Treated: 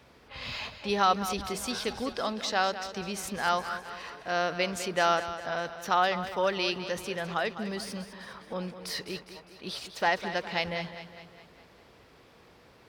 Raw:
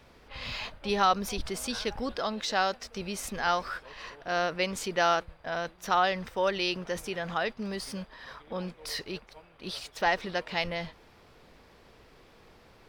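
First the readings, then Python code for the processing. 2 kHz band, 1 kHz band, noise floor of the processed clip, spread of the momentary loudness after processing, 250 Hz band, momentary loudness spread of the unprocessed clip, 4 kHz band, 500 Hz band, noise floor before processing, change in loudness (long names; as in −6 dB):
+0.5 dB, +0.5 dB, −57 dBFS, 15 LU, +0.5 dB, 14 LU, +0.5 dB, +0.5 dB, −58 dBFS, +0.5 dB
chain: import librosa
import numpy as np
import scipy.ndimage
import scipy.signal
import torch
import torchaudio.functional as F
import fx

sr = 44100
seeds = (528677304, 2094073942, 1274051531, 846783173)

y = scipy.signal.sosfilt(scipy.signal.butter(2, 66.0, 'highpass', fs=sr, output='sos'), x)
y = fx.echo_feedback(y, sr, ms=204, feedback_pct=53, wet_db=-12)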